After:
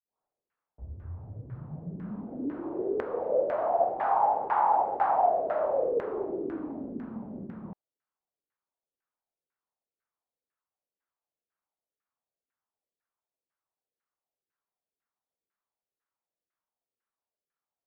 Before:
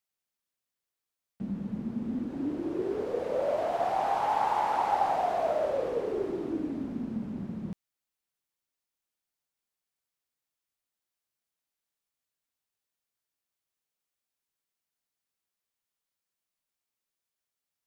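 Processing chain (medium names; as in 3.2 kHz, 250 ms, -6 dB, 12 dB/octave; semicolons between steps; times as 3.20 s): tape start-up on the opening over 2.56 s; bass shelf 390 Hz -7 dB; LFO low-pass saw down 2 Hz 390–1700 Hz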